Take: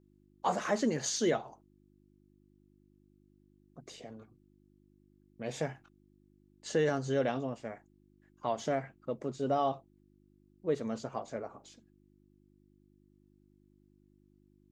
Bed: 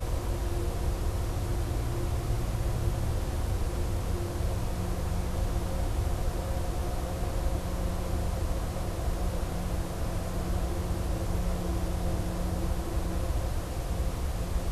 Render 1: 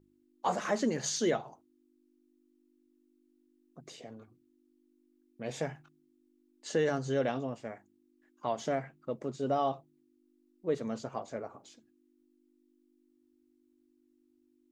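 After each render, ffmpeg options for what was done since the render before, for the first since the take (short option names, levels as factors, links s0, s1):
-af "bandreject=f=50:t=h:w=4,bandreject=f=100:t=h:w=4,bandreject=f=150:t=h:w=4,bandreject=f=200:t=h:w=4"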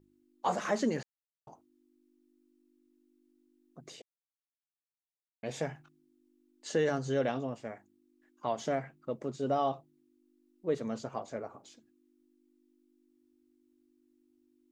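-filter_complex "[0:a]asplit=5[s0][s1][s2][s3][s4];[s0]atrim=end=1.03,asetpts=PTS-STARTPTS,afade=t=out:st=1.026:d=0.004:c=hsin[s5];[s1]atrim=start=1.03:end=1.47,asetpts=PTS-STARTPTS,volume=0[s6];[s2]atrim=start=1.47:end=4.02,asetpts=PTS-STARTPTS,afade=t=in:d=0.004:c=hsin,afade=t=out:st=2.546:d=0.004:c=hsin[s7];[s3]atrim=start=4.02:end=5.43,asetpts=PTS-STARTPTS,volume=0[s8];[s4]atrim=start=5.43,asetpts=PTS-STARTPTS,afade=t=in:d=0.004:c=hsin[s9];[s5][s6][s7][s8][s9]concat=n=5:v=0:a=1"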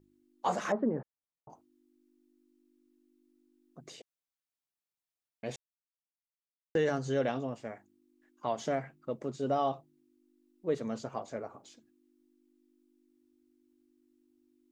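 -filter_complex "[0:a]asettb=1/sr,asplit=3[s0][s1][s2];[s0]atrim=end=0.724[s3];[s1]atrim=start=0.72:end=1.5,asetpts=PTS-STARTPTS,afade=t=in:d=0.004:c=qsin,afade=t=out:st=0.776:d=0.004:c=qsin,lowpass=f=1200:w=0.5412,lowpass=f=1200:w=1.3066[s4];[s2]atrim=start=1.496[s5];[s3][s4]acrossfade=d=0.004:c1=hsin:c2=qsin[s6];[s6][s5]acrossfade=d=0.004:c1=qsin:c2=hsin,asplit=3[s7][s8][s9];[s7]atrim=end=5.56,asetpts=PTS-STARTPTS,afade=t=out:st=5.556:d=0.004:c=hsin[s10];[s8]atrim=start=5.56:end=6.75,asetpts=PTS-STARTPTS,volume=0[s11];[s9]atrim=start=6.75,asetpts=PTS-STARTPTS,afade=t=in:d=0.004:c=hsin[s12];[s10][s11][s12]concat=n=3:v=0:a=1"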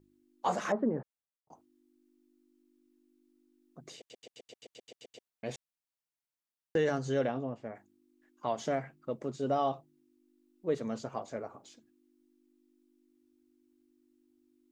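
-filter_complex "[0:a]asplit=3[s0][s1][s2];[s0]afade=t=out:st=7.26:d=0.02[s3];[s1]lowpass=f=1300:p=1,afade=t=in:st=7.26:d=0.02,afade=t=out:st=7.74:d=0.02[s4];[s2]afade=t=in:st=7.74:d=0.02[s5];[s3][s4][s5]amix=inputs=3:normalize=0,asplit=12[s6][s7][s8][s9][s10][s11][s12][s13][s14][s15][s16][s17];[s6]atrim=end=1.5,asetpts=PTS-STARTPTS,afade=t=out:st=1:d=0.5[s18];[s7]atrim=start=1.5:end=4.102,asetpts=PTS-STARTPTS,afade=t=in:d=0.004:c=hsin[s19];[s8]atrim=start=3.968:end=4.102[s20];[s9]atrim=start=3.968:end=4.102[s21];[s10]atrim=start=3.968:end=4.102[s22];[s11]atrim=start=3.968:end=4.102[s23];[s12]atrim=start=3.968:end=4.102[s24];[s13]atrim=start=3.968:end=4.102[s25];[s14]atrim=start=3.968:end=4.102[s26];[s15]atrim=start=3.968:end=4.102[s27];[s16]atrim=start=3.968:end=4.102[s28];[s17]atrim=start=5.268[s29];[s18][s19]concat=n=2:v=0:a=1[s30];[s30][s20]acrossfade=d=0.004:c1=hsin:c2=hsin[s31];[s31][s21]acrossfade=d=0.004:c1=hsin:c2=hsin[s32];[s32][s22]acrossfade=d=0.004:c1=hsin:c2=hsin[s33];[s33][s23]acrossfade=d=0.004:c1=hsin:c2=hsin[s34];[s34][s24]acrossfade=d=0.004:c1=hsin:c2=hsin[s35];[s35][s25]acrossfade=d=0.004:c1=hsin:c2=hsin[s36];[s36][s26]acrossfade=d=0.004:c1=hsin:c2=hsin[s37];[s37][s27]acrossfade=d=0.004:c1=hsin:c2=hsin[s38];[s38][s28]acrossfade=d=0.004:c1=hsin:c2=hsin[s39];[s39][s29]acrossfade=d=0.004:c1=hsin:c2=hsin"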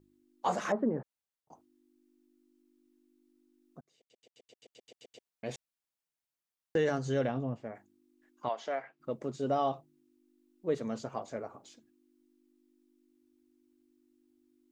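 -filter_complex "[0:a]asettb=1/sr,asplit=3[s0][s1][s2];[s0]atrim=end=6.954[s3];[s1]atrim=start=6.95:end=7.57,asetpts=PTS-STARTPTS,afade=t=in:d=0.004:c=qsin,afade=t=out:st=0.616:d=0.004:c=qsin,asubboost=boost=9.5:cutoff=240[s4];[s2]atrim=start=7.566[s5];[s3][s4]acrossfade=d=0.004:c1=hsin:c2=qsin[s6];[s6][s5]acrossfade=d=0.004:c1=qsin:c2=hsin,asplit=3[s7][s8][s9];[s7]afade=t=out:st=8.48:d=0.02[s10];[s8]highpass=550,lowpass=3900,afade=t=in:st=8.48:d=0.02,afade=t=out:st=8.99:d=0.02[s11];[s9]afade=t=in:st=8.99:d=0.02[s12];[s10][s11][s12]amix=inputs=3:normalize=0,asplit=2[s13][s14];[s13]atrim=end=3.81,asetpts=PTS-STARTPTS,afade=t=out:st=3.806:d=0.004:c=hsin[s15];[s14]atrim=start=3.81,asetpts=PTS-STARTPTS,afade=t=in:d=1.71[s16];[s15][s16]concat=n=2:v=0:a=1"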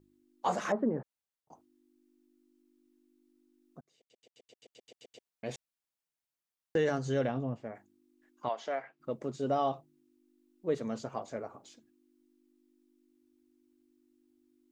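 -af anull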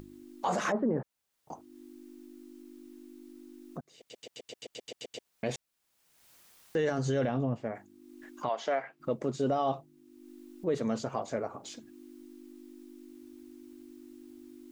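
-filter_complex "[0:a]asplit=2[s0][s1];[s1]acompressor=mode=upward:threshold=0.0224:ratio=2.5,volume=0.891[s2];[s0][s2]amix=inputs=2:normalize=0,alimiter=limit=0.0891:level=0:latency=1:release=21"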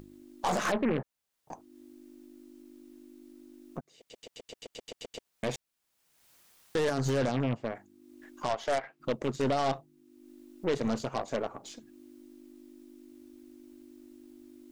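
-af "aeval=exprs='0.0891*(cos(1*acos(clip(val(0)/0.0891,-1,1)))-cos(1*PI/2))+0.00891*(cos(4*acos(clip(val(0)/0.0891,-1,1)))-cos(4*PI/2))+0.0158*(cos(5*acos(clip(val(0)/0.0891,-1,1)))-cos(5*PI/2))+0.0141*(cos(7*acos(clip(val(0)/0.0891,-1,1)))-cos(7*PI/2))':c=same"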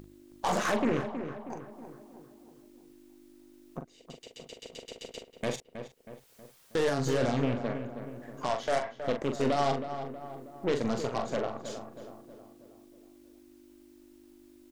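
-filter_complex "[0:a]asplit=2[s0][s1];[s1]adelay=42,volume=0.447[s2];[s0][s2]amix=inputs=2:normalize=0,asplit=2[s3][s4];[s4]adelay=319,lowpass=f=2000:p=1,volume=0.355,asplit=2[s5][s6];[s6]adelay=319,lowpass=f=2000:p=1,volume=0.53,asplit=2[s7][s8];[s8]adelay=319,lowpass=f=2000:p=1,volume=0.53,asplit=2[s9][s10];[s10]adelay=319,lowpass=f=2000:p=1,volume=0.53,asplit=2[s11][s12];[s12]adelay=319,lowpass=f=2000:p=1,volume=0.53,asplit=2[s13][s14];[s14]adelay=319,lowpass=f=2000:p=1,volume=0.53[s15];[s5][s7][s9][s11][s13][s15]amix=inputs=6:normalize=0[s16];[s3][s16]amix=inputs=2:normalize=0"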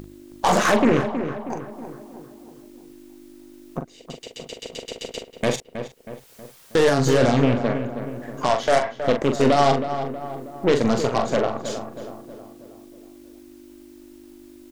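-af "volume=3.35"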